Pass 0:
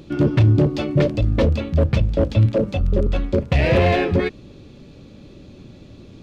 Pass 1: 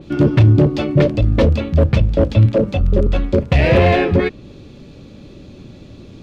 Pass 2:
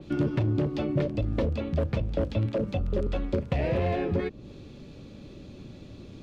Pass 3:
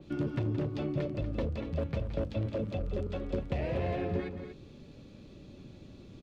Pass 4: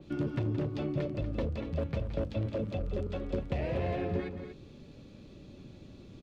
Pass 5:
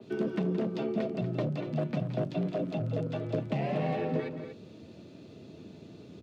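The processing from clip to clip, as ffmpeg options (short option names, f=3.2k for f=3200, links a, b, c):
-af "adynamicequalizer=threshold=0.00891:dfrequency=4000:dqfactor=0.7:tfrequency=4000:tqfactor=0.7:attack=5:release=100:ratio=0.375:range=3:mode=cutabove:tftype=highshelf,volume=4dB"
-filter_complex "[0:a]acrossover=split=250|1100|4300[a][b][c][d];[a]acompressor=threshold=-21dB:ratio=4[e];[b]acompressor=threshold=-22dB:ratio=4[f];[c]acompressor=threshold=-38dB:ratio=4[g];[d]acompressor=threshold=-52dB:ratio=4[h];[e][f][g][h]amix=inputs=4:normalize=0,volume=-6.5dB"
-af "aecho=1:1:172|239.1:0.282|0.316,volume=-6.5dB"
-af anull
-af "afreqshift=72,volume=1.5dB"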